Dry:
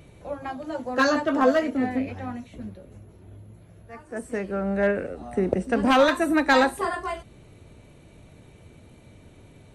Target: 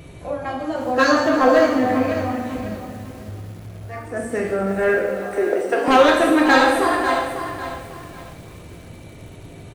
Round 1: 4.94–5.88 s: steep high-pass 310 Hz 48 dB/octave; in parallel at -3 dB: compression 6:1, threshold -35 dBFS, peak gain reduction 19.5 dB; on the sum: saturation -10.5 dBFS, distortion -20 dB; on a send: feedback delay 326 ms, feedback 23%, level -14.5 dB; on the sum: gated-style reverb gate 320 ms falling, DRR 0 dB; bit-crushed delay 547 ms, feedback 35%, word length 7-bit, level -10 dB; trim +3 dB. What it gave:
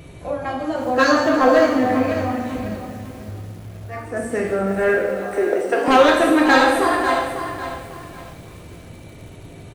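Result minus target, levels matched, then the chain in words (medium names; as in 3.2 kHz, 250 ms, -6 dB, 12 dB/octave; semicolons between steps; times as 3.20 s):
compression: peak gain reduction -6 dB
4.94–5.88 s: steep high-pass 310 Hz 48 dB/octave; in parallel at -3 dB: compression 6:1, threshold -42.5 dBFS, peak gain reduction 25.5 dB; on the sum: saturation -10.5 dBFS, distortion -21 dB; on a send: feedback delay 326 ms, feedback 23%, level -14.5 dB; on the sum: gated-style reverb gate 320 ms falling, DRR 0 dB; bit-crushed delay 547 ms, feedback 35%, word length 7-bit, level -10 dB; trim +3 dB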